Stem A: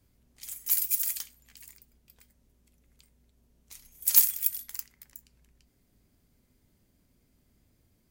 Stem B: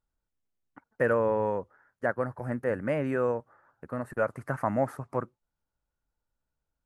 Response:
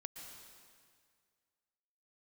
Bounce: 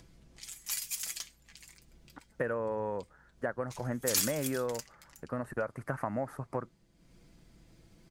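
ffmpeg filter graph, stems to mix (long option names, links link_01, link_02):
-filter_complex "[0:a]lowpass=7100,aecho=1:1:6:0.57,volume=0.5dB[link_01];[1:a]acompressor=threshold=-30dB:ratio=6,adelay=1400,volume=0dB[link_02];[link_01][link_02]amix=inputs=2:normalize=0,acompressor=mode=upward:threshold=-49dB:ratio=2.5"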